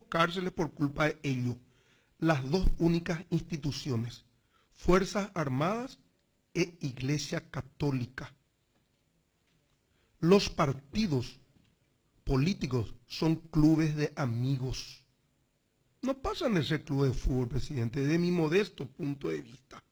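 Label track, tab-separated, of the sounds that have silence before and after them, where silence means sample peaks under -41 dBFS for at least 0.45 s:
2.220000	4.160000	sound
4.800000	5.930000	sound
6.560000	8.270000	sound
10.220000	11.330000	sound
12.270000	14.950000	sound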